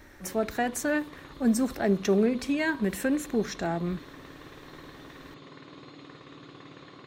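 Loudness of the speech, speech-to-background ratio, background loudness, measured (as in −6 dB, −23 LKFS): −28.0 LKFS, 20.0 dB, −48.0 LKFS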